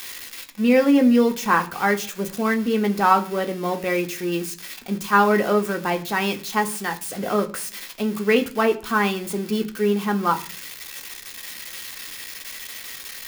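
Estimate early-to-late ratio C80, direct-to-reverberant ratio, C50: 21.0 dB, 4.0 dB, 16.5 dB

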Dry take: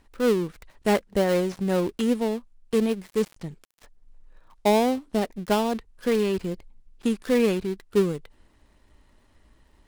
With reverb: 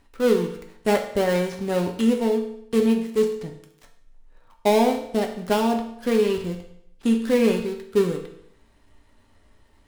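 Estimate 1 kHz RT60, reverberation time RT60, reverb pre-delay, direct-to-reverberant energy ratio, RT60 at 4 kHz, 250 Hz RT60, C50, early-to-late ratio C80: 0.70 s, 0.70 s, 4 ms, 2.5 dB, 0.65 s, 0.70 s, 8.0 dB, 11.0 dB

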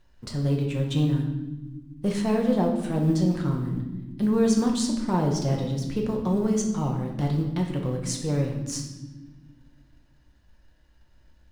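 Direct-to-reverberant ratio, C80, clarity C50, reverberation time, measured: 0.5 dB, 8.0 dB, 5.5 dB, not exponential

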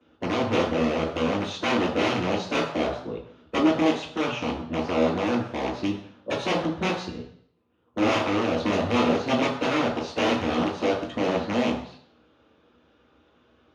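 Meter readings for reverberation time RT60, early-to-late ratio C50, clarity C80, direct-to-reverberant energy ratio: 0.60 s, 5.5 dB, 9.0 dB, -11.5 dB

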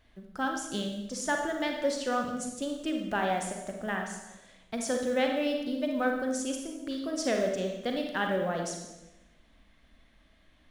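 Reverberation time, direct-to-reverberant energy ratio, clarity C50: 1.0 s, 2.0 dB, 3.5 dB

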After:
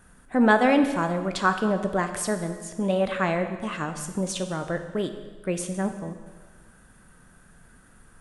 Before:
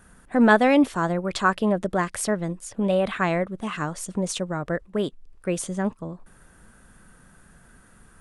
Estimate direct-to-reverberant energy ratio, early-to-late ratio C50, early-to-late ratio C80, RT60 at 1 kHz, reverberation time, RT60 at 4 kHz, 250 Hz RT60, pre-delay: 7.0 dB, 9.0 dB, 10.5 dB, 1.4 s, 1.4 s, 1.3 s, 1.4 s, 6 ms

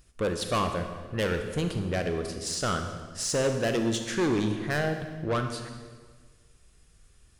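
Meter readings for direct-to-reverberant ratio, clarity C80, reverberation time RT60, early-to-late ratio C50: 5.5 dB, 8.5 dB, 1.5 s, 6.5 dB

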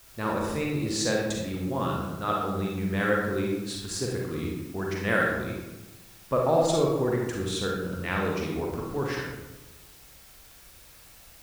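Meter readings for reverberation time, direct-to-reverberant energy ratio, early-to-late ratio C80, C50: 1.1 s, -2.0 dB, 4.0 dB, 0.5 dB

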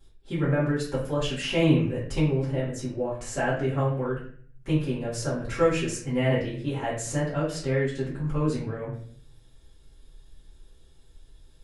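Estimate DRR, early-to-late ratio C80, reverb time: -10.0 dB, 8.5 dB, 0.50 s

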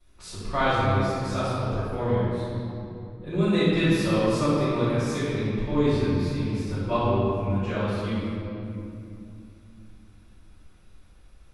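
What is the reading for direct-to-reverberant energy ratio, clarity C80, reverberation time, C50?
-16.5 dB, -2.0 dB, 2.7 s, -4.5 dB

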